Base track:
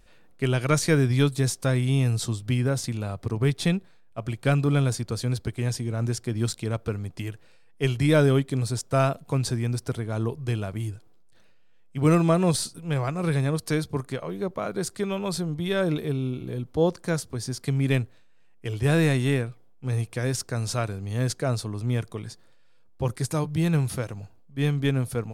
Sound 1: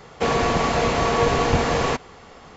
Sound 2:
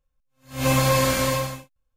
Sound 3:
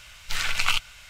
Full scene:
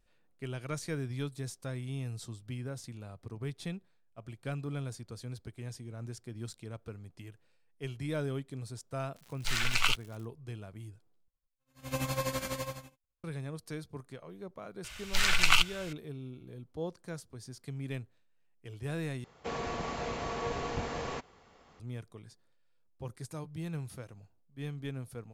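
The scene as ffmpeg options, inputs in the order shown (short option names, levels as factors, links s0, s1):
-filter_complex "[3:a]asplit=2[s0][s1];[0:a]volume=0.168[s2];[s0]aeval=exprs='val(0)*gte(abs(val(0)),0.0112)':c=same[s3];[2:a]tremolo=f=12:d=0.75[s4];[s2]asplit=3[s5][s6][s7];[s5]atrim=end=11.284[s8];[s4]atrim=end=1.96,asetpts=PTS-STARTPTS,volume=0.282[s9];[s6]atrim=start=13.236:end=19.244[s10];[1:a]atrim=end=2.56,asetpts=PTS-STARTPTS,volume=0.158[s11];[s7]atrim=start=21.796[s12];[s3]atrim=end=1.09,asetpts=PTS-STARTPTS,volume=0.596,afade=t=in:d=0.004:c=hsin,afade=t=out:st=1.086:d=0.004:c=hsin,adelay=9160[s13];[s1]atrim=end=1.09,asetpts=PTS-STARTPTS,afade=t=in:d=0.004:c=hsin,afade=t=out:st=1.086:d=0.004:c=hsin,adelay=14840[s14];[s8][s9]acrossfade=d=0.004:c1=hsin:c2=hsin[s15];[s15][s10]acrossfade=d=0.004:c1=hsin:c2=hsin[s16];[s16][s11]acrossfade=d=0.004:c1=hsin:c2=hsin[s17];[s17][s12]acrossfade=d=0.004:c1=hsin:c2=hsin[s18];[s18][s13][s14]amix=inputs=3:normalize=0"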